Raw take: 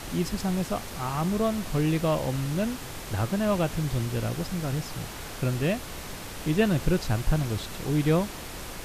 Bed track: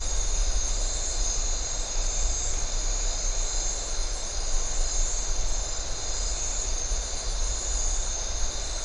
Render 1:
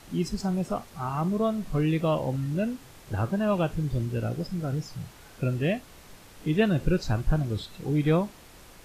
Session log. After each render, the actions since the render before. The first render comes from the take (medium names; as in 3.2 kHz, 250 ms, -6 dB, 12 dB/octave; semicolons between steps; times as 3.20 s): noise print and reduce 12 dB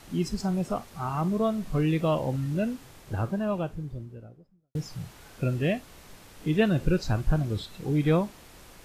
2.75–4.75 s: studio fade out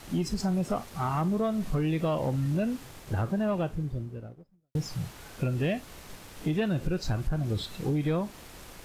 compression 6:1, threshold -27 dBFS, peak gain reduction 10.5 dB; waveshaping leveller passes 1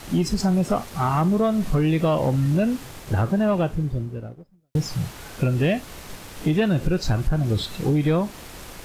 trim +7.5 dB